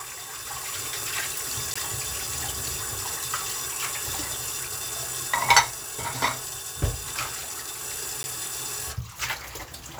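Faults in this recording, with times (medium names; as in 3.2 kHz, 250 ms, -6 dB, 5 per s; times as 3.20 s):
1.74–1.75 s: dropout 15 ms
8.23–8.24 s: dropout 10 ms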